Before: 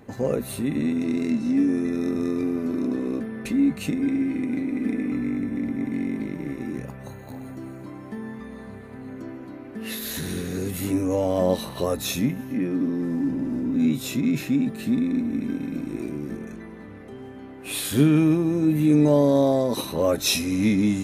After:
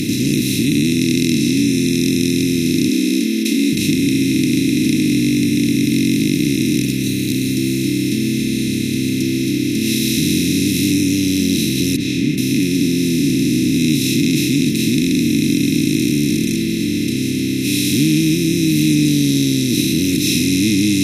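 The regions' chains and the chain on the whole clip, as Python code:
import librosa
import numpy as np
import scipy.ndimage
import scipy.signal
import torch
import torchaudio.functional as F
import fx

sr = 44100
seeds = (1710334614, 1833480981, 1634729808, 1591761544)

y = fx.chain(x, sr, fx.steep_highpass(hz=200.0, slope=96),
    fx.doubler(ms=27.0, db=-12.0), at=(2.88, 3.73))
y = fx.chain(y, sr, fx.lowpass(hz=1800.0, slope=24),
    fx.tilt_eq(slope=2.0),
    fx.detune_double(cents=33), at=(11.96, 12.38))
y = fx.bin_compress(y, sr, power=0.2)
y = scipy.signal.sosfilt(scipy.signal.ellip(3, 1.0, 80, [330.0, 2100.0], 'bandstop', fs=sr, output='sos'), y)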